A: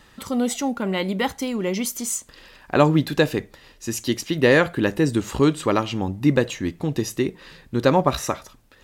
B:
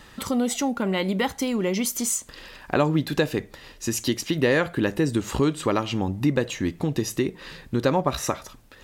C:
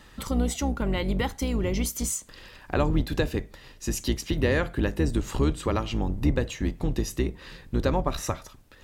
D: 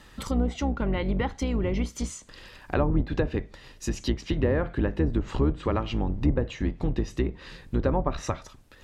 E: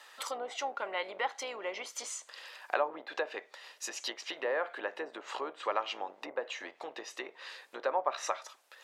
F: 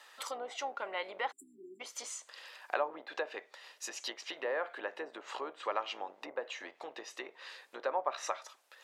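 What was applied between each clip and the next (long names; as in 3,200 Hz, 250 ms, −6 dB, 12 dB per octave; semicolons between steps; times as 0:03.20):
downward compressor 2 to 1, threshold −28 dBFS, peak gain reduction 10 dB; level +4 dB
sub-octave generator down 2 octaves, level +3 dB; level −4.5 dB
treble cut that deepens with the level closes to 1,200 Hz, closed at −19 dBFS
high-pass filter 580 Hz 24 dB per octave
time-frequency box erased 0:01.32–0:01.80, 400–7,200 Hz; level −2.5 dB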